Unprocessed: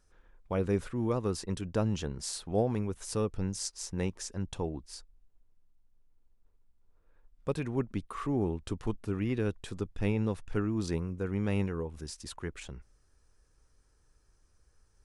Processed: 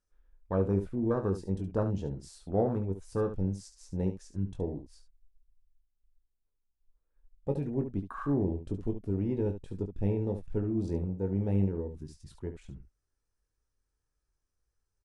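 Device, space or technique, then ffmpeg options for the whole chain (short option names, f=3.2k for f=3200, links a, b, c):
slapback doubling: -filter_complex "[0:a]afwtdn=0.0158,asplit=3[a][b][c];[b]adelay=21,volume=-7dB[d];[c]adelay=71,volume=-10dB[e];[a][d][e]amix=inputs=3:normalize=0"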